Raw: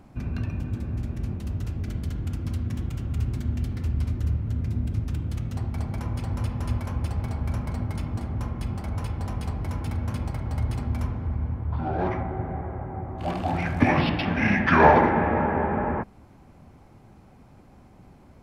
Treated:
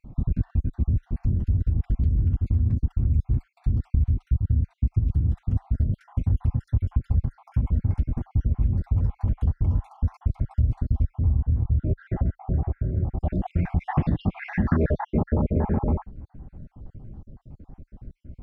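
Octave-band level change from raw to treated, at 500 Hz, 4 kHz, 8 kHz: -7.0 dB, under -15 dB, under -20 dB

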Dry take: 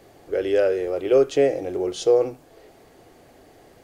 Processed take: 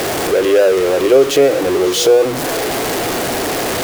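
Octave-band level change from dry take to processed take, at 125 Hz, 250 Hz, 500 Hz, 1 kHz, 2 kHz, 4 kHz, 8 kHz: +12.0, +11.0, +8.5, +15.5, +16.0, +18.5, +20.5 dB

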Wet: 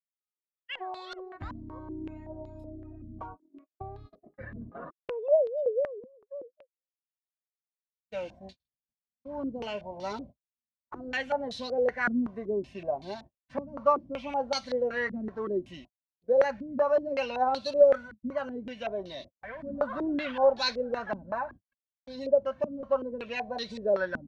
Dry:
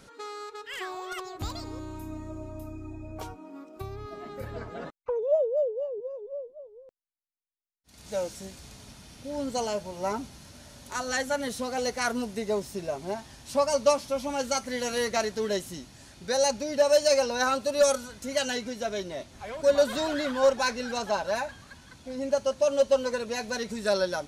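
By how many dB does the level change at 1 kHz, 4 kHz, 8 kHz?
-1.0 dB, -6.0 dB, under -15 dB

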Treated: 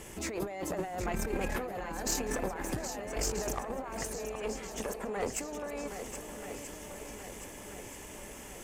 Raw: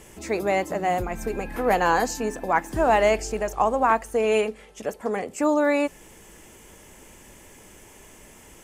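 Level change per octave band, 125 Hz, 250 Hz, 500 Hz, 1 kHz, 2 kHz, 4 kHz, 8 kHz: -4.5, -10.5, -13.0, -16.5, -12.5, -5.0, +0.5 dB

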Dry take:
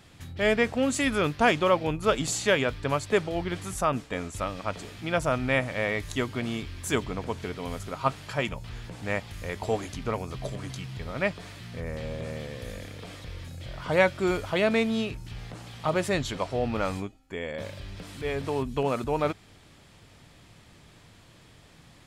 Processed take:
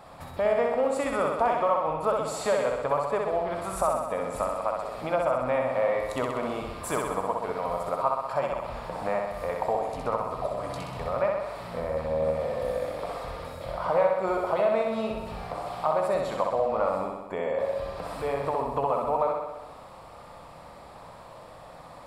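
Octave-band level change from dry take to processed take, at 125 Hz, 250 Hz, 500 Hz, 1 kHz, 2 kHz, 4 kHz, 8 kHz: -7.0, -6.0, +3.0, +4.5, -7.0, -9.5, -6.0 dB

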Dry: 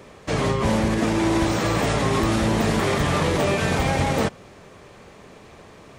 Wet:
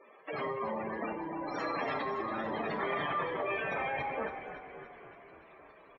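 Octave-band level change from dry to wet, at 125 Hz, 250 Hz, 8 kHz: -26.0 dB, -18.5 dB, under -35 dB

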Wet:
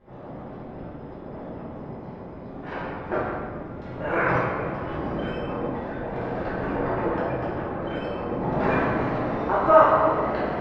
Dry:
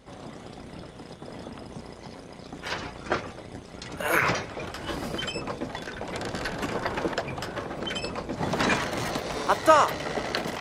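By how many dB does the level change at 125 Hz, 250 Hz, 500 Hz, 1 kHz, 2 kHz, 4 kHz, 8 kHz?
+5.0 dB, +5.0 dB, +5.5 dB, +3.5 dB, -1.0 dB, -13.0 dB, under -25 dB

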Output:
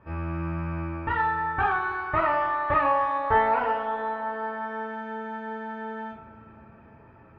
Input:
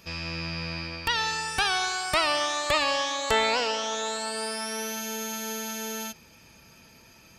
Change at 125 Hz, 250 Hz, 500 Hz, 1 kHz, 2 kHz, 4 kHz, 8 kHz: +6.0 dB, +2.0 dB, +1.0 dB, +5.5 dB, -1.0 dB, under -20 dB, under -40 dB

